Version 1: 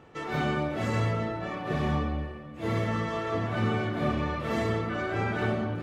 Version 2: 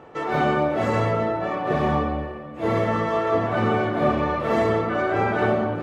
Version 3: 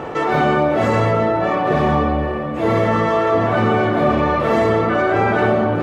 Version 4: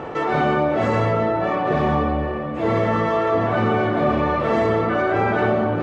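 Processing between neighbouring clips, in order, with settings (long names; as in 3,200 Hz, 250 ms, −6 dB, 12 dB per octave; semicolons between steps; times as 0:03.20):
parametric band 680 Hz +11 dB 2.8 octaves
envelope flattener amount 50%; level +3.5 dB
high-frequency loss of the air 52 metres; level −3 dB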